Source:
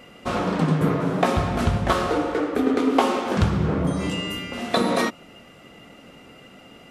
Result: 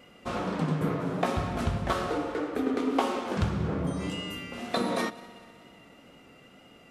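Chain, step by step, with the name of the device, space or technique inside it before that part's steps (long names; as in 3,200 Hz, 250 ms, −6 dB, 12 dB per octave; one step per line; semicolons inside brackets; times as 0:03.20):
multi-head tape echo (echo machine with several playback heads 62 ms, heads first and third, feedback 69%, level −22 dB; tape wow and flutter 23 cents)
level −7.5 dB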